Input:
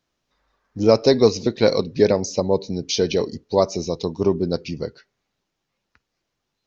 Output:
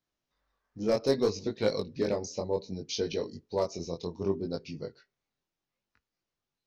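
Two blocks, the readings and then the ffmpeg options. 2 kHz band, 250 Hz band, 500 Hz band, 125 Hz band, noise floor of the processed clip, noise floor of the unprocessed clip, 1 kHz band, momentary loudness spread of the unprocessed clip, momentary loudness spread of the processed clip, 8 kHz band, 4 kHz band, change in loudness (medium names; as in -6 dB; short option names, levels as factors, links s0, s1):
-11.0 dB, -11.5 dB, -11.5 dB, -12.0 dB, under -85 dBFS, -79 dBFS, -12.0 dB, 10 LU, 10 LU, no reading, -11.5 dB, -11.5 dB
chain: -af "volume=2.11,asoftclip=hard,volume=0.473,flanger=delay=19:depth=4.9:speed=0.65,volume=0.376"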